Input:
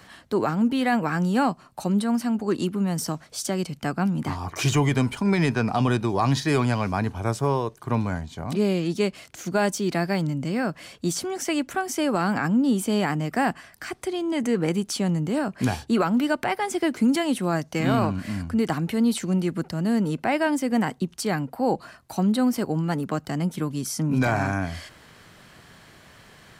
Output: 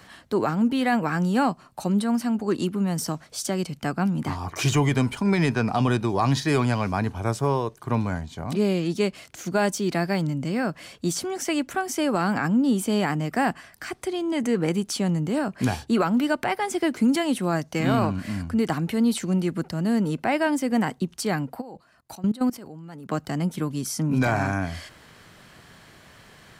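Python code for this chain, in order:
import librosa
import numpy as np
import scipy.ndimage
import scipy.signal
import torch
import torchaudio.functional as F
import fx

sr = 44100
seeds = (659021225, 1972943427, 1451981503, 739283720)

y = fx.level_steps(x, sr, step_db=20, at=(21.6, 23.08), fade=0.02)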